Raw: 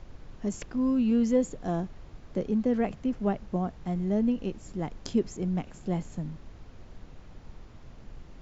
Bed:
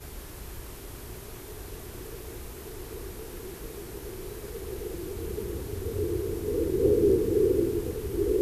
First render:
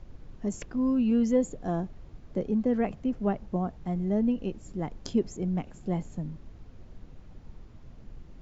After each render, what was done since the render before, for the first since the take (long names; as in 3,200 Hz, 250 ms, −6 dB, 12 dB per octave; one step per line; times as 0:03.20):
broadband denoise 6 dB, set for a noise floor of −50 dBFS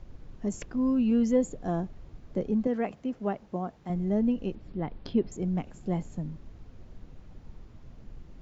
0:02.67–0:03.90: high-pass filter 290 Hz 6 dB per octave
0:04.55–0:05.32: Butterworth low-pass 4,400 Hz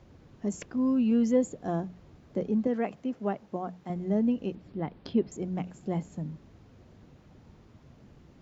high-pass filter 88 Hz 12 dB per octave
mains-hum notches 60/120/180 Hz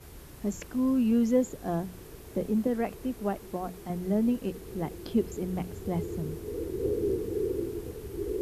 mix in bed −7 dB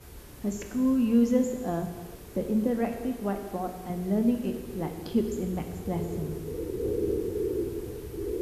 reverb whose tail is shaped and stops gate 450 ms falling, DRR 4.5 dB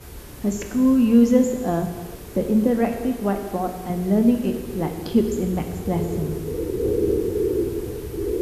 level +7.5 dB